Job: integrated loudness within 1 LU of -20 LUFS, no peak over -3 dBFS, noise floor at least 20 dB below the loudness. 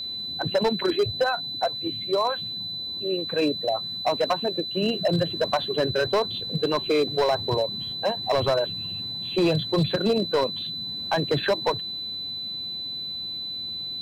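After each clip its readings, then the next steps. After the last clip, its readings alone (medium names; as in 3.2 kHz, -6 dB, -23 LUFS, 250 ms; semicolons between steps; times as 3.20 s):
clipped samples 1.8%; clipping level -16.5 dBFS; steady tone 4 kHz; tone level -30 dBFS; loudness -25.5 LUFS; peak level -16.5 dBFS; loudness target -20.0 LUFS
-> clip repair -16.5 dBFS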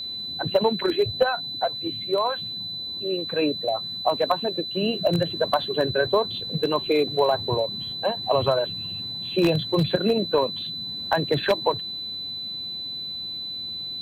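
clipped samples 0.0%; steady tone 4 kHz; tone level -30 dBFS
-> band-stop 4 kHz, Q 30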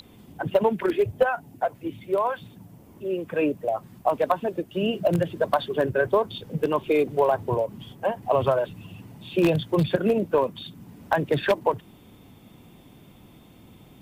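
steady tone not found; loudness -25.0 LUFS; peak level -7.0 dBFS; loudness target -20.0 LUFS
-> trim +5 dB; peak limiter -3 dBFS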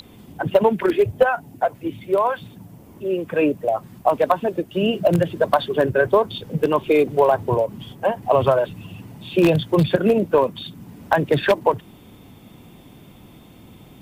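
loudness -20.0 LUFS; peak level -3.0 dBFS; noise floor -47 dBFS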